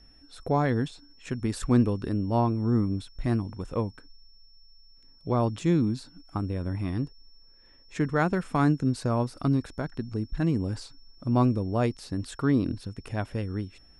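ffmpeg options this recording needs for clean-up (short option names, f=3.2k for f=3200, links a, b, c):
-af "bandreject=f=5.4k:w=30"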